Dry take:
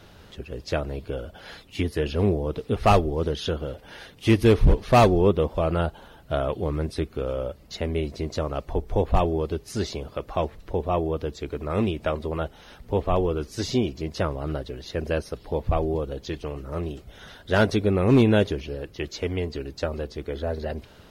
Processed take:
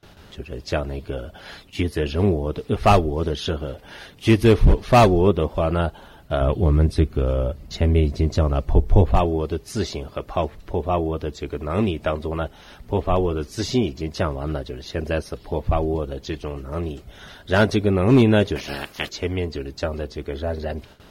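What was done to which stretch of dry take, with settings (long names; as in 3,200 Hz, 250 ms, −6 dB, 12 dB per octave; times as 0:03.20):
0:06.41–0:09.12: low-shelf EQ 210 Hz +11 dB
0:18.55–0:19.08: ceiling on every frequency bin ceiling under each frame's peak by 26 dB
whole clip: notch filter 490 Hz, Q 12; noise gate with hold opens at −40 dBFS; level +3 dB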